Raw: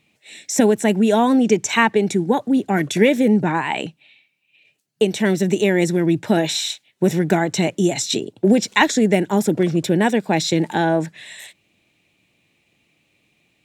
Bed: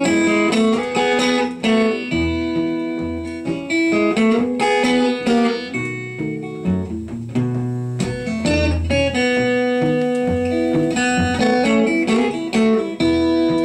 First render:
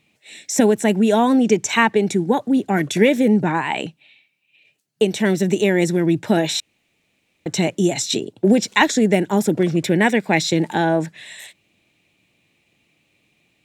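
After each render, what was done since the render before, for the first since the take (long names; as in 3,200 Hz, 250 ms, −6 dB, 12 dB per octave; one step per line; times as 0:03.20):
0:06.60–0:07.46: fill with room tone
0:09.76–0:10.40: parametric band 2,100 Hz +9.5 dB 0.49 octaves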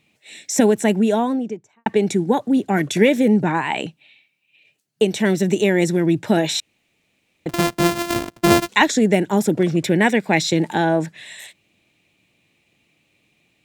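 0:00.82–0:01.86: fade out and dull
0:07.49–0:08.69: samples sorted by size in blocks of 128 samples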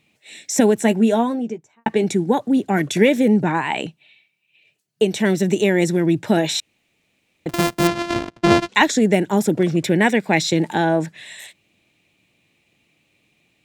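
0:00.83–0:02.04: double-tracking delay 13 ms −9 dB
0:03.87–0:05.12: notch comb filter 270 Hz
0:07.87–0:08.75: low-pass filter 5,000 Hz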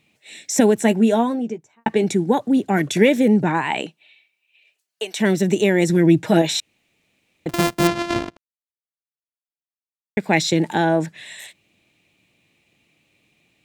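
0:03.82–0:05.18: high-pass filter 250 Hz → 970 Hz
0:05.89–0:06.42: comb filter 6.3 ms
0:08.37–0:10.17: silence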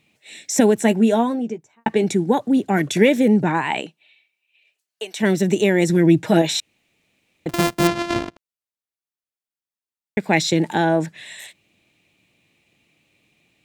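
0:03.80–0:05.23: clip gain −3 dB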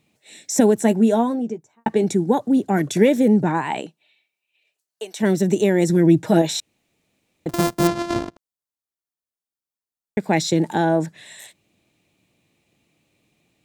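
parametric band 2,500 Hz −7.5 dB 1.3 octaves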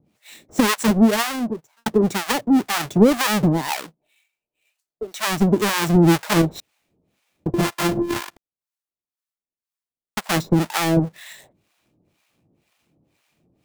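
each half-wave held at its own peak
two-band tremolo in antiphase 2 Hz, depth 100%, crossover 730 Hz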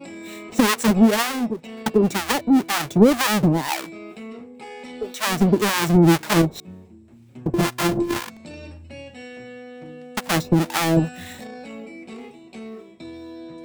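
mix in bed −21.5 dB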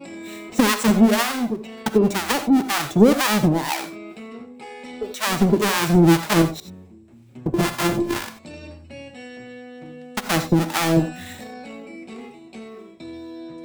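reverb whose tail is shaped and stops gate 110 ms rising, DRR 9.5 dB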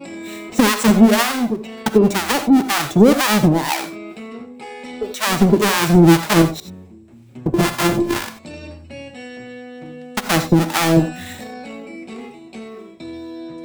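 level +4 dB
brickwall limiter −2 dBFS, peak gain reduction 2.5 dB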